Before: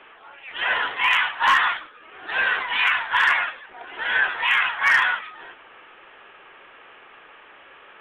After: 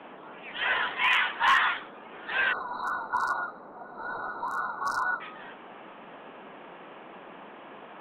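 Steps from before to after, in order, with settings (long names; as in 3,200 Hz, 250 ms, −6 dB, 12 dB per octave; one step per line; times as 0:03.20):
time-frequency box erased 0:02.52–0:05.21, 1,500–3,800 Hz
noise in a band 180–1,100 Hz −43 dBFS
level −4.5 dB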